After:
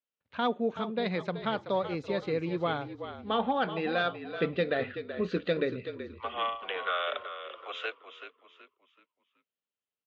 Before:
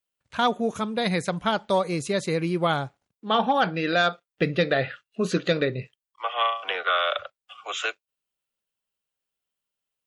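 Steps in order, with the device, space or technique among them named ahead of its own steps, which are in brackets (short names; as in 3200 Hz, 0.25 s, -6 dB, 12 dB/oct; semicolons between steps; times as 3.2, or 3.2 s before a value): frequency-shifting delay pedal into a guitar cabinet (frequency-shifting echo 0.378 s, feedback 34%, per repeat -43 Hz, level -10.5 dB; speaker cabinet 78–4000 Hz, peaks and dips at 130 Hz -5 dB, 250 Hz +5 dB, 460 Hz +5 dB); gain -8 dB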